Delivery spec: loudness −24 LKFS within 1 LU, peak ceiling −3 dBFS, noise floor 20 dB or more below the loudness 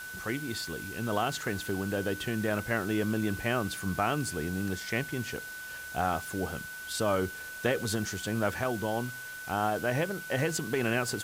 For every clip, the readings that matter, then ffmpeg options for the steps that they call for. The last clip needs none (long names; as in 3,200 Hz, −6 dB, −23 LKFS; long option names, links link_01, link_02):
interfering tone 1,500 Hz; level of the tone −40 dBFS; background noise floor −42 dBFS; target noise floor −52 dBFS; integrated loudness −32.0 LKFS; sample peak −15.0 dBFS; target loudness −24.0 LKFS
→ -af "bandreject=frequency=1500:width=30"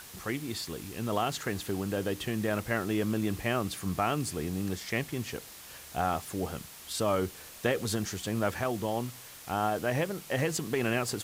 interfering tone none found; background noise floor −48 dBFS; target noise floor −52 dBFS
→ -af "afftdn=noise_reduction=6:noise_floor=-48"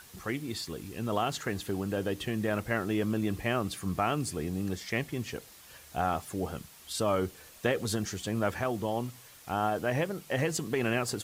background noise floor −53 dBFS; integrated loudness −32.5 LKFS; sample peak −15.5 dBFS; target loudness −24.0 LKFS
→ -af "volume=8.5dB"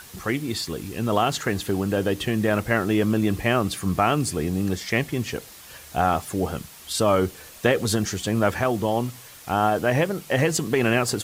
integrated loudness −24.0 LKFS; sample peak −7.0 dBFS; background noise floor −45 dBFS